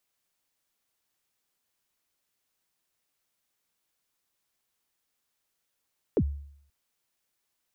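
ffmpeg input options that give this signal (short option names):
-f lavfi -i "aevalsrc='0.126*pow(10,-3*t/0.66)*sin(2*PI*(520*0.061/log(71/520)*(exp(log(71/520)*min(t,0.061)/0.061)-1)+71*max(t-0.061,0)))':d=0.53:s=44100"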